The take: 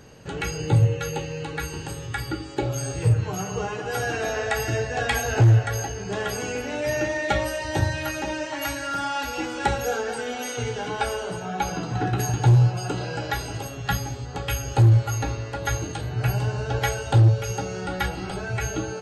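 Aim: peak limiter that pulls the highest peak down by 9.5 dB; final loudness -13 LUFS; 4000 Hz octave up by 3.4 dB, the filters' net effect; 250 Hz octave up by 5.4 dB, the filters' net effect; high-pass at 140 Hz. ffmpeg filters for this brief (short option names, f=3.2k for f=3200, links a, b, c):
-af "highpass=140,equalizer=f=250:t=o:g=9,equalizer=f=4k:t=o:g=4.5,volume=14.5dB,alimiter=limit=-3dB:level=0:latency=1"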